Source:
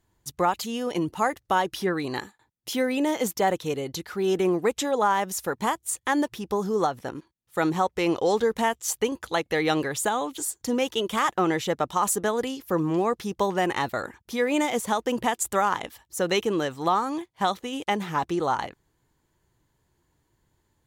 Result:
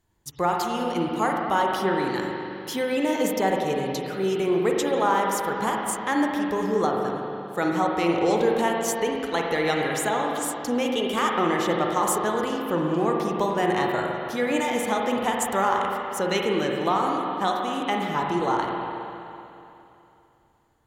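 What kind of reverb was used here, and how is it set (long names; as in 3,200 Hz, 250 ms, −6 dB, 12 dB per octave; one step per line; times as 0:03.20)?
spring reverb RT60 2.9 s, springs 41/52 ms, chirp 55 ms, DRR −0.5 dB
level −1.5 dB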